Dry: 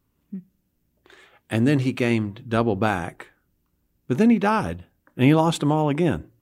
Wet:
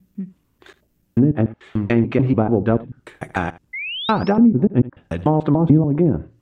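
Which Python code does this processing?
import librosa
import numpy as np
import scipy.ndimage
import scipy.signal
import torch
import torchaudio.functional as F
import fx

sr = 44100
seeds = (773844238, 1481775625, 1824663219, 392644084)

p1 = fx.block_reorder(x, sr, ms=146.0, group=4)
p2 = fx.spec_paint(p1, sr, seeds[0], shape='rise', start_s=3.73, length_s=0.6, low_hz=2000.0, high_hz=5900.0, level_db=-33.0)
p3 = fx.env_lowpass_down(p2, sr, base_hz=310.0, full_db=-14.5)
p4 = p3 + fx.echo_single(p3, sr, ms=77, db=-18.5, dry=0)
y = p4 * librosa.db_to_amplitude(5.5)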